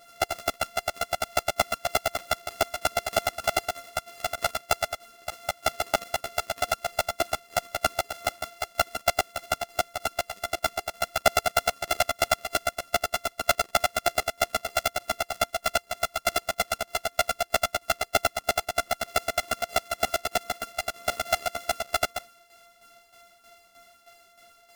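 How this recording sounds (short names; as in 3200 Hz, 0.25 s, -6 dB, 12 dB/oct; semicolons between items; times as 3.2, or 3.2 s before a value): a buzz of ramps at a fixed pitch in blocks of 64 samples; tremolo saw down 3.2 Hz, depth 70%; a shimmering, thickened sound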